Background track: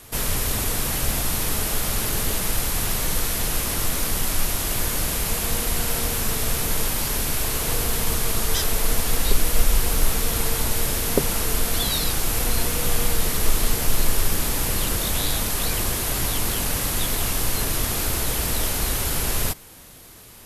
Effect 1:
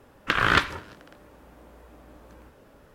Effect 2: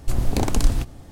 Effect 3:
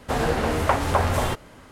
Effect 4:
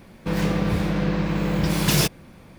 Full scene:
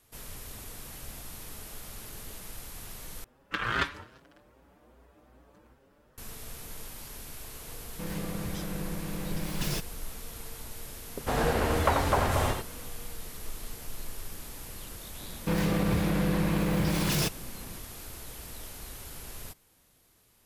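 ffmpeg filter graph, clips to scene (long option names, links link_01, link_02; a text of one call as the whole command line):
ffmpeg -i bed.wav -i cue0.wav -i cue1.wav -i cue2.wav -i cue3.wav -filter_complex "[4:a]asplit=2[link_01][link_02];[0:a]volume=-19.5dB[link_03];[1:a]asplit=2[link_04][link_05];[link_05]adelay=6.2,afreqshift=2.5[link_06];[link_04][link_06]amix=inputs=2:normalize=1[link_07];[3:a]aecho=1:1:87:0.596[link_08];[link_02]alimiter=level_in=15.5dB:limit=-1dB:release=50:level=0:latency=1[link_09];[link_03]asplit=2[link_10][link_11];[link_10]atrim=end=3.244[link_12];[link_07]atrim=end=2.94,asetpts=PTS-STARTPTS,volume=-5.5dB[link_13];[link_11]atrim=start=6.176[link_14];[link_01]atrim=end=2.58,asetpts=PTS-STARTPTS,volume=-13.5dB,afade=type=in:duration=0.004:curve=hsin,afade=type=out:start_time=2.576:duration=0.004:curve=hsin,adelay=7730[link_15];[link_08]atrim=end=1.71,asetpts=PTS-STARTPTS,volume=-5dB,afade=type=in:duration=0.004:curve=hsin,afade=type=out:start_time=1.706:duration=0.004:curve=hsin,adelay=11180[link_16];[link_09]atrim=end=2.58,asetpts=PTS-STARTPTS,volume=-17dB,afade=type=in:duration=0.004:curve=hsin,afade=type=out:start_time=2.576:duration=0.004:curve=hsin,adelay=15210[link_17];[link_12][link_13]acrossfade=duration=0.004:curve1=hsin:curve2=hsin[link_18];[link_18][link_14]acrossfade=duration=0.004:curve1=hsin:curve2=hsin[link_19];[link_19][link_15][link_16][link_17]amix=inputs=4:normalize=0" out.wav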